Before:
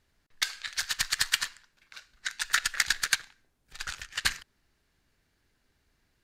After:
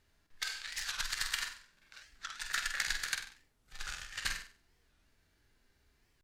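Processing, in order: harmonic-percussive split percussive -14 dB; on a send: flutter echo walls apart 8.1 m, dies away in 0.38 s; on the sum: warped record 45 rpm, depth 250 cents; trim +3 dB

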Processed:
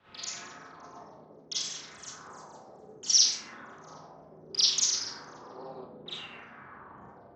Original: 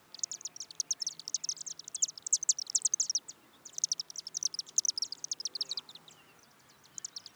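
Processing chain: LFO low-pass saw down 0.66 Hz 400–3600 Hz; Schroeder reverb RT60 0.53 s, combs from 30 ms, DRR -5 dB; three bands expanded up and down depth 100%; trim +6.5 dB

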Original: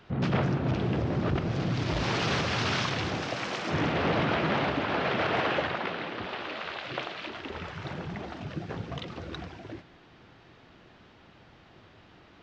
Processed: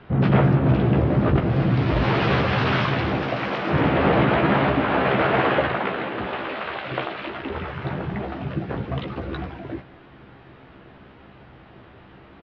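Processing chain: distance through air 360 m; doubling 15 ms -5.5 dB; trim +8.5 dB

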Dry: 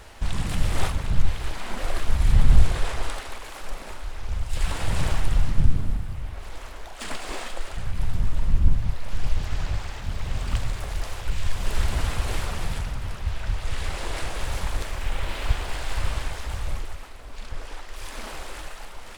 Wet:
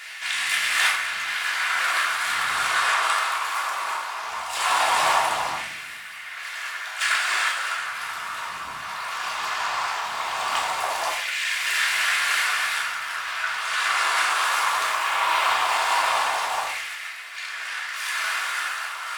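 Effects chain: LFO high-pass saw down 0.18 Hz 820–2000 Hz; simulated room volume 530 m³, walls furnished, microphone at 3.2 m; trim +6 dB

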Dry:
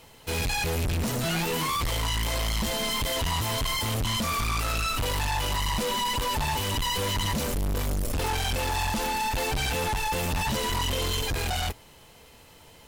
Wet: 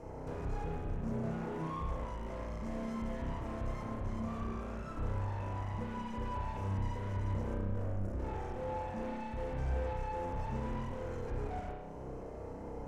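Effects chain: in parallel at -7.5 dB: decimation with a swept rate 9×, swing 160% 0.27 Hz; on the sum: compression 10:1, threshold -38 dBFS, peak gain reduction 14.5 dB; FFT filter 130 Hz 0 dB, 570 Hz +9 dB, 2.1 kHz -5 dB, 3.4 kHz -21 dB, 5.9 kHz -4 dB, 15 kHz -22 dB; saturation -38.5 dBFS, distortion -11 dB; bass shelf 420 Hz +10.5 dB; spring tank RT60 1.1 s, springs 31 ms, chirp 25 ms, DRR -3.5 dB; trim -7.5 dB

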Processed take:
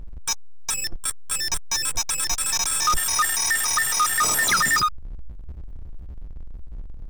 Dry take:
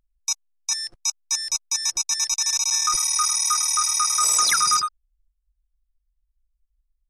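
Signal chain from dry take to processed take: pitch shift switched off and on +6.5 st, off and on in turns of 140 ms; tilt EQ -3.5 dB/octave; power-law waveshaper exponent 0.5; trim +1 dB

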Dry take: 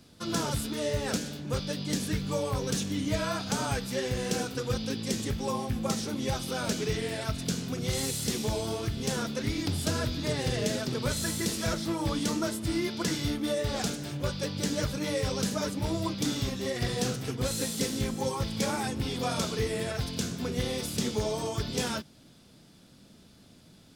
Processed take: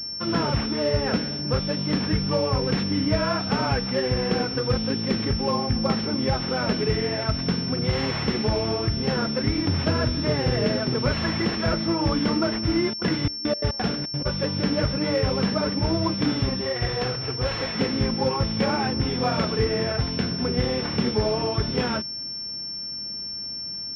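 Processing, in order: 12.90–14.25 s: trance gate ".xxx..x.x.xxx.x" 174 bpm -24 dB; 16.61–17.75 s: peaking EQ 220 Hz -12 dB 0.98 oct; class-D stage that switches slowly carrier 5.4 kHz; trim +7 dB

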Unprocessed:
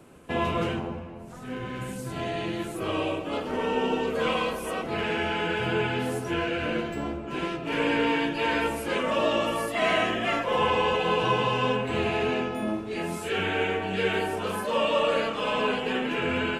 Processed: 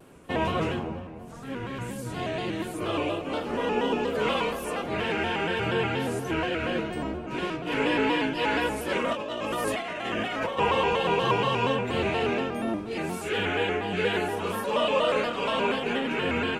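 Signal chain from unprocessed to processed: 9.13–10.59 s: compressor with a negative ratio -31 dBFS, ratio -1; vibrato with a chosen wave square 4.2 Hz, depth 100 cents

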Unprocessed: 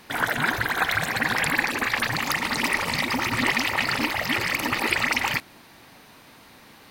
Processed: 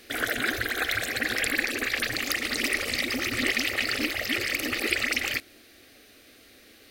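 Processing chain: gain riding 2 s; static phaser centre 390 Hz, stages 4

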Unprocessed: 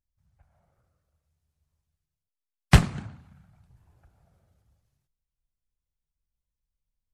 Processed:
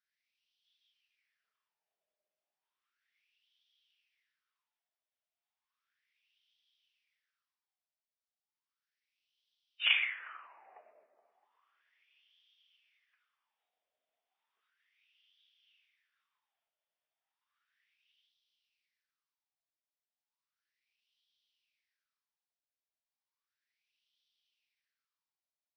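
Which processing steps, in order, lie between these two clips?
pre-emphasis filter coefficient 0.97; wide varispeed 0.277×; tilt EQ +4 dB/octave; in parallel at +2 dB: compression, threshold -43 dBFS, peak gain reduction 20.5 dB; on the sum: wah-wah 0.34 Hz 610–3300 Hz, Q 6.7; trim +4 dB

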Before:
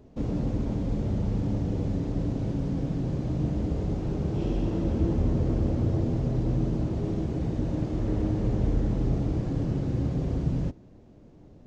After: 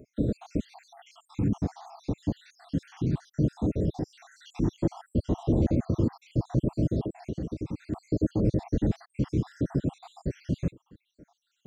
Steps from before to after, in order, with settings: random holes in the spectrogram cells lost 72%; high-pass 120 Hz 6 dB/octave; 7.02–7.92 s: compression, threshold -35 dBFS, peak gain reduction 8.5 dB; LFO notch saw down 0.63 Hz 510–3100 Hz; trim +6 dB

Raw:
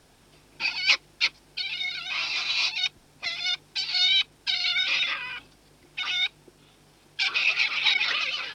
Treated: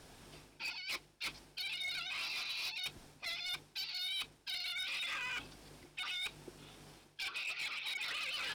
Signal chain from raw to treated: reverse; compression 12:1, threshold -37 dBFS, peak gain reduction 22 dB; reverse; hard clipper -37 dBFS, distortion -12 dB; trim +1 dB

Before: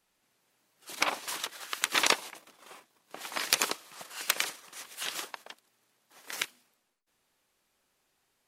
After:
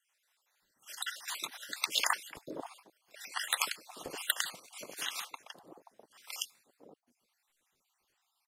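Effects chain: random holes in the spectrogram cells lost 49%; bands offset in time highs, lows 530 ms, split 680 Hz

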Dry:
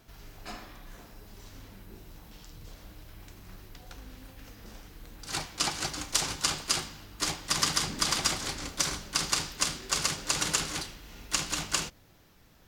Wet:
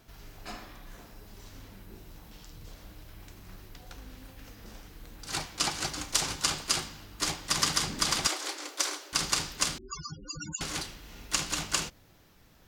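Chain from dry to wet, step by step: 8.27–9.13 s: elliptic high-pass 310 Hz, stop band 40 dB; 9.78–10.61 s: loudest bins only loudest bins 8

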